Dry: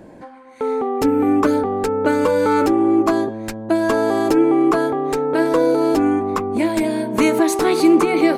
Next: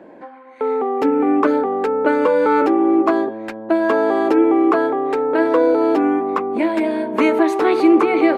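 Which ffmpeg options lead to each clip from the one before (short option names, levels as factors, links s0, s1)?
-filter_complex "[0:a]acrossover=split=230 3300:gain=0.0708 1 0.112[s0][s1][s2];[s0][s1][s2]amix=inputs=3:normalize=0,volume=1.26"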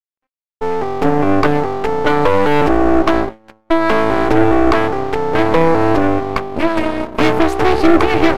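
-af "aeval=exprs='0.75*(cos(1*acos(clip(val(0)/0.75,-1,1)))-cos(1*PI/2))+0.188*(cos(6*acos(clip(val(0)/0.75,-1,1)))-cos(6*PI/2))':c=same,aeval=exprs='sgn(val(0))*max(abs(val(0))-0.0237,0)':c=same,agate=range=0.0224:threshold=0.126:ratio=3:detection=peak,volume=1.12"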